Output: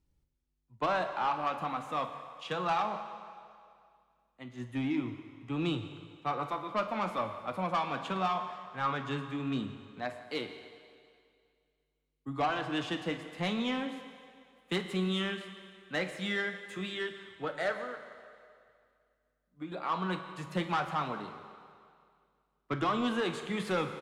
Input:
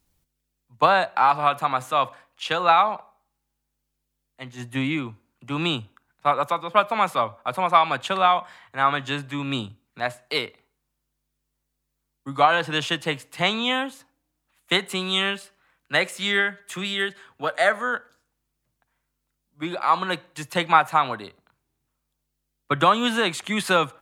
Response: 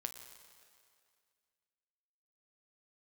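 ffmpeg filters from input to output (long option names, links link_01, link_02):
-filter_complex "[0:a]firequalizer=gain_entry='entry(290,0);entry(690,-7);entry(12000,-17)':delay=0.05:min_phase=1,asettb=1/sr,asplit=3[link_01][link_02][link_03];[link_01]atrim=end=17.764[link_04];[link_02]atrim=start=17.76:end=19.72,asetpts=PTS-STARTPTS,afade=type=in:duration=0.004:curve=qsin,afade=type=out:start_time=1.956:duration=0.004:curve=qsin,acompressor=threshold=-36dB:ratio=5[link_05];[link_03]atrim=start=19.716[link_06];[link_04][link_05]acrossfade=duration=0.004:curve1=hsin:curve2=qsin[link_07];[link_07][link_06]acrossfade=duration=0.004:curve1=qsin:curve2=hsin,flanger=delay=2.1:depth=3:regen=-56:speed=0.17:shape=triangular,asoftclip=type=tanh:threshold=-24.5dB[link_08];[1:a]atrim=start_sample=2205[link_09];[link_08][link_09]afir=irnorm=-1:irlink=0,volume=3dB"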